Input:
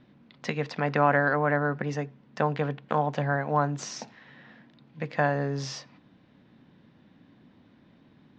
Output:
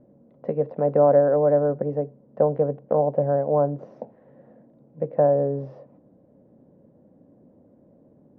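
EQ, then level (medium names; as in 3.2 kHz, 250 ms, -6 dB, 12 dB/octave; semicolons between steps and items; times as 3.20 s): resonant low-pass 550 Hz, resonance Q 4.2; 0.0 dB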